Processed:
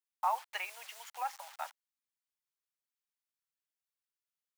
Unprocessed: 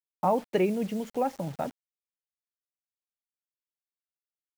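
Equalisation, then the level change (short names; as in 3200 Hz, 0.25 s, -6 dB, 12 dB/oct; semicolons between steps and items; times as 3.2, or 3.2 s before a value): steep high-pass 870 Hz 36 dB/oct; 0.0 dB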